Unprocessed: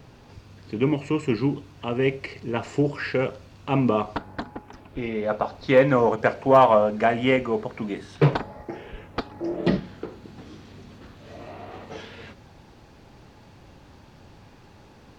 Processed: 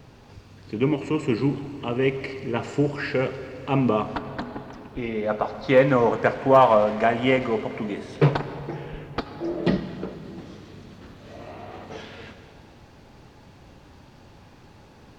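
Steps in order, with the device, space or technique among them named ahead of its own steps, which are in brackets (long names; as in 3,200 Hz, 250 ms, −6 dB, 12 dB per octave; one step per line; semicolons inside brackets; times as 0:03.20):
saturated reverb return (on a send at −9 dB: convolution reverb RT60 2.5 s, pre-delay 73 ms + soft clipping −21 dBFS, distortion −9 dB)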